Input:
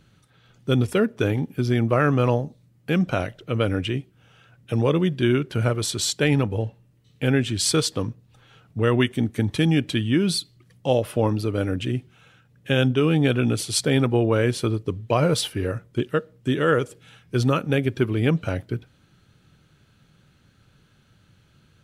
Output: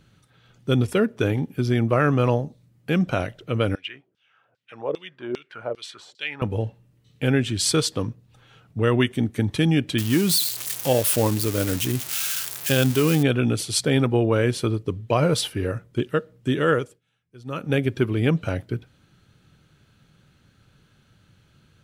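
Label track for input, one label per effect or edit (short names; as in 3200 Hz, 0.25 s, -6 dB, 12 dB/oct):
3.750000	6.420000	LFO band-pass saw down 2.5 Hz 440–5000 Hz
9.980000	13.230000	switching spikes of -15.5 dBFS
16.710000	17.740000	dip -23.5 dB, fades 0.30 s linear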